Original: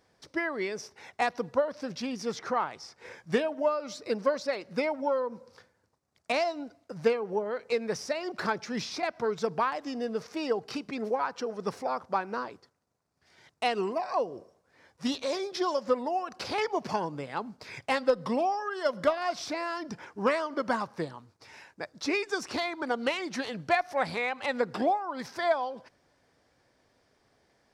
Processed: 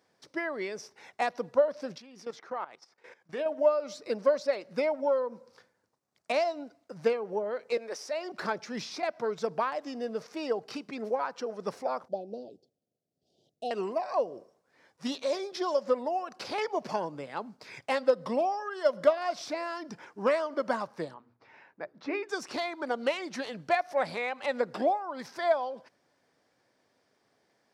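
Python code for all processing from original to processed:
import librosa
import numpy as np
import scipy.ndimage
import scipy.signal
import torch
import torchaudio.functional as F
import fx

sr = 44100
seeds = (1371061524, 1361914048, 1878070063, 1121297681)

y = fx.chain(x, sr, fx.bass_treble(bass_db=-7, treble_db=-5),
    fx.level_steps(step_db=16), at=(1.98, 3.46))
y = fx.chain(y, sr, fx.highpass(hz=310.0, slope=24),
    fx.transient(attack_db=-7, sustain_db=0), at=(7.77, 8.32))
y = fx.chain(y, sr, fx.cheby2_bandstop(low_hz=990.0, high_hz=2200.0, order=4, stop_db=40),
    fx.high_shelf(hz=2400.0, db=-11.0), at=(12.08, 13.71))
y = fx.chain(y, sr, fx.lowpass(hz=2200.0, slope=12),
    fx.hum_notches(base_hz=60, count=7), at=(21.14, 22.29))
y = scipy.signal.sosfilt(scipy.signal.butter(2, 150.0, 'highpass', fs=sr, output='sos'), y)
y = fx.dynamic_eq(y, sr, hz=590.0, q=3.8, threshold_db=-44.0, ratio=4.0, max_db=7)
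y = y * librosa.db_to_amplitude(-3.0)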